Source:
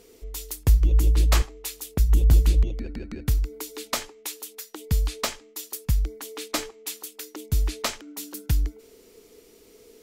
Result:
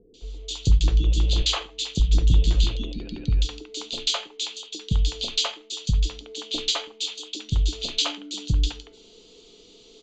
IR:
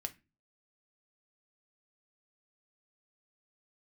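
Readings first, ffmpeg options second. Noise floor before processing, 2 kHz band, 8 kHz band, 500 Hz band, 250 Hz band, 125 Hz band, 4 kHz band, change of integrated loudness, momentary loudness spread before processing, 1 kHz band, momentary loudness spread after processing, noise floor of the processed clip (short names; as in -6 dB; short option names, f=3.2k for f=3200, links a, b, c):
-54 dBFS, -0.5 dB, 0.0 dB, -1.0 dB, +1.5 dB, 0.0 dB, +10.5 dB, +1.0 dB, 16 LU, -1.0 dB, 13 LU, -52 dBFS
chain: -filter_complex "[0:a]highshelf=f=2.5k:t=q:w=3:g=9.5,bandreject=f=5.4k:w=5.4,asoftclip=type=hard:threshold=-11dB,acrossover=split=470|2600[a][b][c];[c]adelay=140[d];[b]adelay=210[e];[a][e][d]amix=inputs=3:normalize=0,asplit=2[f][g];[1:a]atrim=start_sample=2205,lowpass=4.8k[h];[g][h]afir=irnorm=-1:irlink=0,volume=4.5dB[i];[f][i]amix=inputs=2:normalize=0,aresample=16000,aresample=44100,volume=-5.5dB"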